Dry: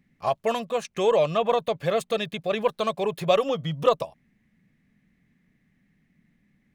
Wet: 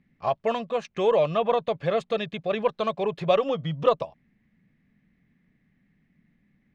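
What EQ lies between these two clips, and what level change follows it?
air absorption 150 m; 0.0 dB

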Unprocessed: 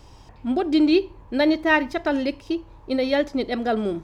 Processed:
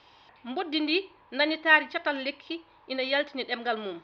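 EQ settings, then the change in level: band-pass 2600 Hz, Q 0.66; air absorption 270 m; bell 3900 Hz +7 dB 0.83 oct; +3.5 dB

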